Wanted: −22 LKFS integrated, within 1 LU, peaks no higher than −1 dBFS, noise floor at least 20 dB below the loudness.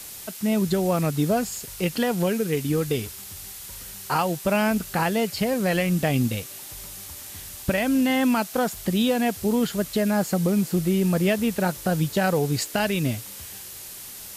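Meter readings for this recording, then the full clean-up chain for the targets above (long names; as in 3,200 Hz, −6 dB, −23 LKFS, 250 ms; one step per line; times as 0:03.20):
background noise floor −40 dBFS; target noise floor −44 dBFS; integrated loudness −24.0 LKFS; sample peak −11.5 dBFS; target loudness −22.0 LKFS
→ broadband denoise 6 dB, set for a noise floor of −40 dBFS
level +2 dB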